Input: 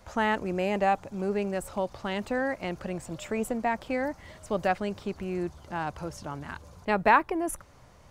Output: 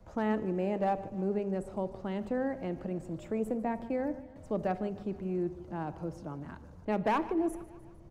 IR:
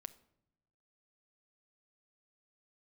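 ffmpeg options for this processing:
-filter_complex "[0:a]asettb=1/sr,asplit=3[a][b][c];[a]atrim=end=1.194[d];[b]atrim=start=1.19:end=1.68,asetpts=PTS-STARTPTS,afade=t=in:d=0.004:c=qsin,afade=t=out:st=0.486:d=0.004:c=qsin,lowpass=f=11k:w=0.5412,lowpass=f=11k:w=1.3066[e];[c]atrim=start=1.676[f];[d][e]acrossfade=d=0.004:c1=hsin:c2=qsin[g];[g][f]acrossfade=d=0.004:c1=qsin:c2=hsin,asettb=1/sr,asplit=3[h][i][j];[h]atrim=end=3.654[k];[i]atrim=start=3.65:end=4.36,asetpts=PTS-STARTPTS,afade=t=in:d=0.004:c=qsin,afade=t=out:st=0.706:d=0.004:c=qsin,agate=range=-33dB:threshold=-36dB:ratio=3:detection=peak[l];[j]atrim=start=4.356[m];[k][l]acrossfade=d=0.004:c1=hsin:c2=qsin[n];[n][m]acrossfade=d=0.004:c1=qsin:c2=hsin,tiltshelf=f=750:g=9.5,acrossover=split=180|990|3000[o][p][q][r];[o]alimiter=level_in=15.5dB:limit=-24dB:level=0:latency=1,volume=-15.5dB[s];[s][p][q][r]amix=inputs=4:normalize=0,asoftclip=type=hard:threshold=-15dB,aecho=1:1:151|302|453|604|755:0.119|0.0689|0.04|0.0232|0.0134[t];[1:a]atrim=start_sample=2205[u];[t][u]afir=irnorm=-1:irlink=0,volume=-1.5dB"

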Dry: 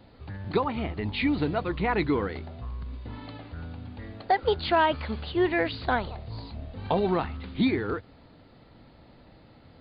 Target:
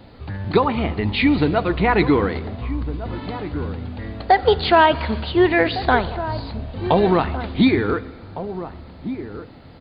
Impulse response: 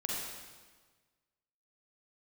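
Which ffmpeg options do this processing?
-filter_complex "[0:a]asplit=2[a][b];[b]adelay=1458,volume=-12dB,highshelf=f=4k:g=-32.8[c];[a][c]amix=inputs=2:normalize=0,asplit=2[d][e];[1:a]atrim=start_sample=2205[f];[e][f]afir=irnorm=-1:irlink=0,volume=-18dB[g];[d][g]amix=inputs=2:normalize=0,volume=8dB"

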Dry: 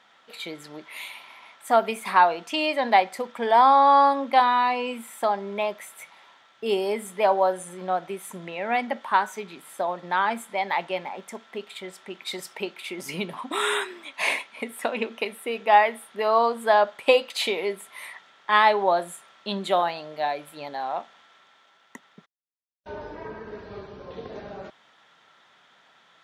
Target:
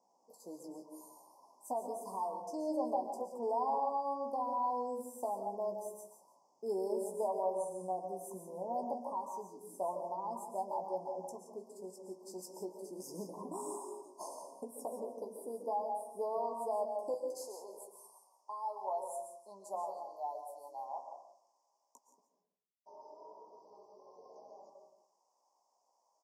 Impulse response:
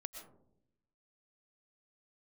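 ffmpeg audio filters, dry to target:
-filter_complex "[0:a]asetnsamples=n=441:p=0,asendcmd='17.14 highpass f 820',highpass=210,alimiter=limit=-16.5dB:level=0:latency=1:release=388,asuperstop=centerf=2300:order=20:qfactor=0.58,asplit=2[a][b];[b]adelay=16,volume=-7dB[c];[a][c]amix=inputs=2:normalize=0,aecho=1:1:172:0.211[d];[1:a]atrim=start_sample=2205,afade=t=out:st=0.37:d=0.01,atrim=end_sample=16758,asetrate=38808,aresample=44100[e];[d][e]afir=irnorm=-1:irlink=0,volume=-7dB"

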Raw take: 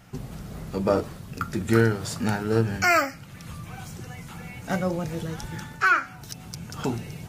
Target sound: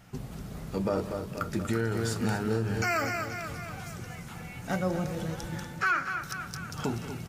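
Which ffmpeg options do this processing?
-filter_complex "[0:a]asplit=2[a][b];[b]aecho=0:1:240|480|720|960|1200|1440|1680:0.282|0.163|0.0948|0.055|0.0319|0.0185|0.0107[c];[a][c]amix=inputs=2:normalize=0,alimiter=limit=-15.5dB:level=0:latency=1:release=75,asplit=2[d][e];[e]aecho=0:1:187:0.141[f];[d][f]amix=inputs=2:normalize=0,volume=-3dB"

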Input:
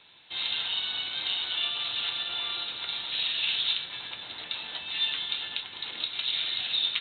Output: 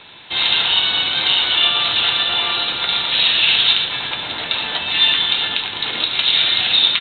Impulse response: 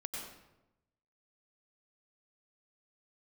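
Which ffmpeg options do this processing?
-filter_complex "[0:a]highshelf=f=3.9k:g=-10,asplit=2[a][b];[b]aecho=0:1:72.89|113.7:0.282|0.251[c];[a][c]amix=inputs=2:normalize=0,alimiter=level_in=19dB:limit=-1dB:release=50:level=0:latency=1,volume=-1dB"

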